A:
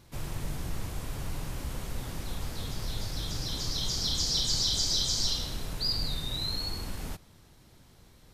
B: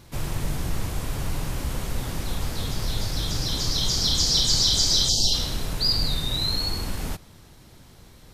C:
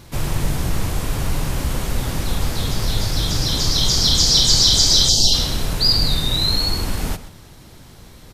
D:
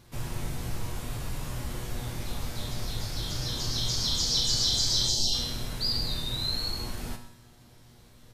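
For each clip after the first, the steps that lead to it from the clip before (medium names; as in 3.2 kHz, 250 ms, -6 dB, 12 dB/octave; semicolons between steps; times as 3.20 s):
spectral selection erased 5.09–5.33 s, 920–2600 Hz; trim +7.5 dB
echo from a far wall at 22 m, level -14 dB; trim +6.5 dB
feedback comb 120 Hz, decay 0.7 s, harmonics all, mix 80%; trim -1.5 dB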